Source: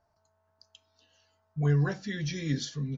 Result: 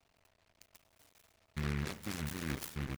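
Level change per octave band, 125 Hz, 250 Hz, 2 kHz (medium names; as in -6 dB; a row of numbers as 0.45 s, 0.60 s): -12.0 dB, -9.0 dB, -5.0 dB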